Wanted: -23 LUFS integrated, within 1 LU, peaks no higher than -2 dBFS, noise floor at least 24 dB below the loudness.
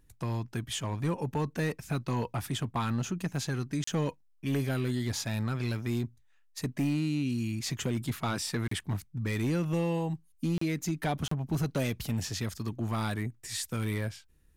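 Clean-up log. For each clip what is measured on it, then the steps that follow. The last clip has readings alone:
clipped 1.5%; flat tops at -23.5 dBFS; dropouts 4; longest dropout 34 ms; loudness -32.5 LUFS; peak -23.5 dBFS; loudness target -23.0 LUFS
-> clip repair -23.5 dBFS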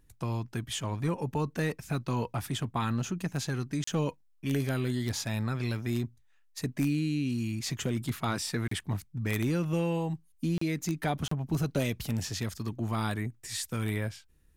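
clipped 0.0%; dropouts 4; longest dropout 34 ms
-> interpolate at 3.84/8.68/10.58/11.28, 34 ms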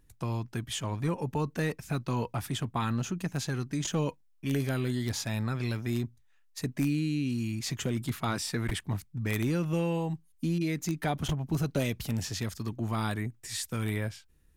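dropouts 0; loudness -32.5 LUFS; peak -14.5 dBFS; loudness target -23.0 LUFS
-> gain +9.5 dB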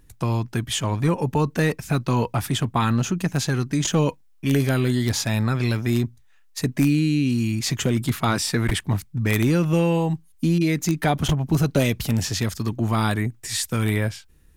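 loudness -23.0 LUFS; peak -5.0 dBFS; noise floor -53 dBFS

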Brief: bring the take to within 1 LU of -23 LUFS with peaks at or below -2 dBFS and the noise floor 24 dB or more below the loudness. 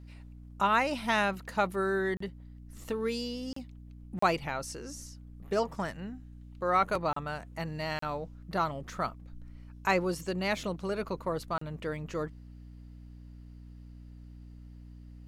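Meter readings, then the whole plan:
dropouts 6; longest dropout 34 ms; hum 60 Hz; harmonics up to 300 Hz; hum level -46 dBFS; loudness -32.5 LUFS; peak -12.5 dBFS; loudness target -23.0 LUFS
-> interpolate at 2.17/3.53/4.19/7.13/7.99/11.58, 34 ms; de-hum 60 Hz, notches 5; gain +9.5 dB

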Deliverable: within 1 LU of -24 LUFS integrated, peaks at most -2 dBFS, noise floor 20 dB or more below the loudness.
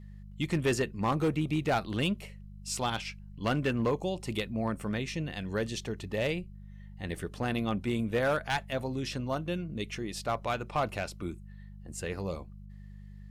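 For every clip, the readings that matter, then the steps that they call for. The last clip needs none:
clipped 0.9%; flat tops at -22.0 dBFS; hum 50 Hz; harmonics up to 200 Hz; hum level -45 dBFS; loudness -32.5 LUFS; peak -22.0 dBFS; loudness target -24.0 LUFS
-> clip repair -22 dBFS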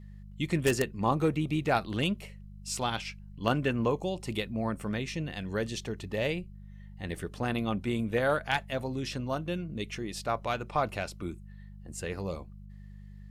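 clipped 0.0%; hum 50 Hz; harmonics up to 200 Hz; hum level -45 dBFS
-> de-hum 50 Hz, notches 4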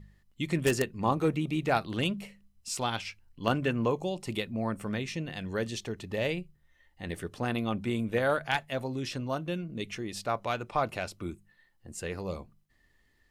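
hum none; loudness -32.5 LUFS; peak -12.0 dBFS; loudness target -24.0 LUFS
-> gain +8.5 dB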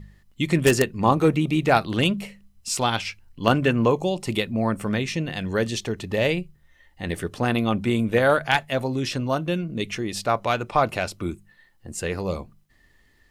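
loudness -24.0 LUFS; peak -3.5 dBFS; noise floor -59 dBFS

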